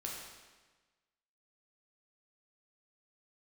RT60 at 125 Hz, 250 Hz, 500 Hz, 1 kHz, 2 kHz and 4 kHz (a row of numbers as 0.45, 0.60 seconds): 1.4, 1.3, 1.3, 1.3, 1.3, 1.2 seconds